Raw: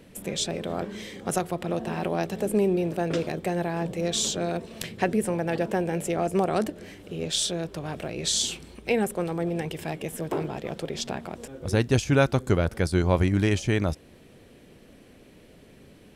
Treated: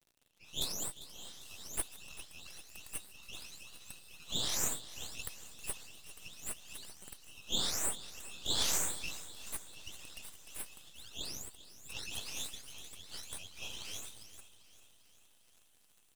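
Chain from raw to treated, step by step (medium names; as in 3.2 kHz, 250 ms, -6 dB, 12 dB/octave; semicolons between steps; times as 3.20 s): delay that grows with frequency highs late, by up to 457 ms; spectral noise reduction 15 dB; crackle 140 per s -48 dBFS; rippled Chebyshev high-pass 2.6 kHz, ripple 3 dB; on a send at -9 dB: reverberation, pre-delay 3 ms; on the sum: half-wave rectifier; feedback delay 397 ms, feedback 58%, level -16 dB; trim +2 dB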